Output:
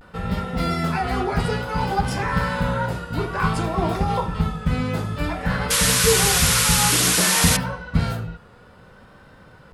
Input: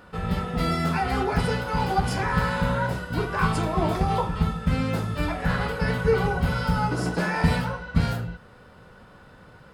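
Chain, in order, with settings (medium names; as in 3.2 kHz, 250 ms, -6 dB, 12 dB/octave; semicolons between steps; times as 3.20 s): vibrato 0.57 Hz 60 cents; painted sound noise, 5.70–7.57 s, 970–12000 Hz -21 dBFS; trim +1.5 dB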